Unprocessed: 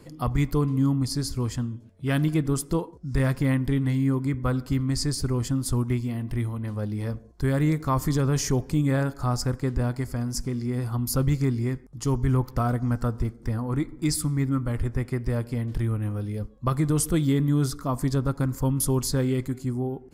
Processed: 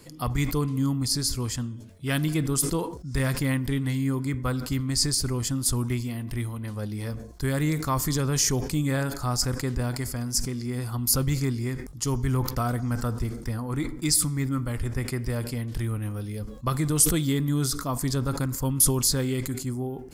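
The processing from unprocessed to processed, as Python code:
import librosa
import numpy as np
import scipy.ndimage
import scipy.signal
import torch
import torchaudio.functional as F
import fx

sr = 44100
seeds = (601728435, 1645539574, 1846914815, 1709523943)

y = fx.high_shelf(x, sr, hz=2300.0, db=11.0)
y = fx.sustainer(y, sr, db_per_s=76.0)
y = y * librosa.db_to_amplitude(-3.0)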